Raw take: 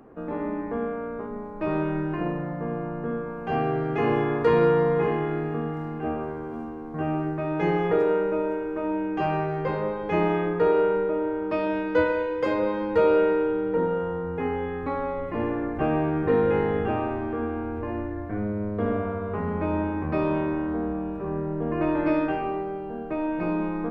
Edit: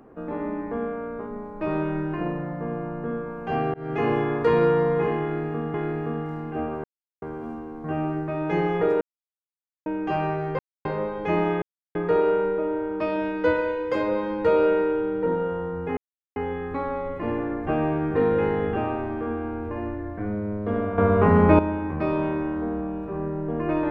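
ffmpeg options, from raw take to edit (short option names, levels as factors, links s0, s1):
-filter_complex "[0:a]asplit=11[s0][s1][s2][s3][s4][s5][s6][s7][s8][s9][s10];[s0]atrim=end=3.74,asetpts=PTS-STARTPTS,afade=t=out:st=3.736:d=0.004:c=hsin[s11];[s1]atrim=start=3.74:end=5.742,asetpts=PTS-STARTPTS,afade=t=in:d=0.28:c=qsin[s12];[s2]atrim=start=5.218:end=6.32,asetpts=PTS-STARTPTS,afade=t=out:st=1.098:d=0.004:c=hsin,apad=pad_dur=0.38[s13];[s3]atrim=start=6.32:end=8.11,asetpts=PTS-STARTPTS,afade=t=in:d=0.004:c=hsin,afade=t=out:st=1.786:d=0.004:c=hsin[s14];[s4]atrim=start=8.11:end=8.96,asetpts=PTS-STARTPTS,volume=0[s15];[s5]atrim=start=8.96:end=9.69,asetpts=PTS-STARTPTS,afade=t=in:d=0.004:c=hsin,afade=t=out:st=0.726:d=0.004:c=hsin,apad=pad_dur=0.26[s16];[s6]atrim=start=9.69:end=10.46,asetpts=PTS-STARTPTS,afade=t=in:d=0.004:c=hsin,afade=t=out:st=0.766:d=0.004:c=hsin,apad=pad_dur=0.33[s17];[s7]atrim=start=10.46:end=14.48,asetpts=PTS-STARTPTS,afade=t=in:d=0.004:c=hsin,afade=t=out:st=4.016:d=0.004:c=hsin,apad=pad_dur=0.39[s18];[s8]atrim=start=14.48:end=19.102,asetpts=PTS-STARTPTS,afade=t=in:d=0.004:c=hsin[s19];[s9]atrim=start=19.098:end=19.712,asetpts=PTS-STARTPTS,volume=3.76[s20];[s10]atrim=start=19.708[s21];[s11][s12]concat=n=2:v=0:a=1[s22];[s13][s14][s15][s16][s17][s18][s19]concat=n=7:v=0:a=1[s23];[s22][s23]acrossfade=d=0.004:c1=hsin:c2=hsin[s24];[s24][s20]acrossfade=d=0.004:c1=hsin:c2=hsin[s25];[s25][s21]acrossfade=d=0.004:c1=hsin:c2=hsin"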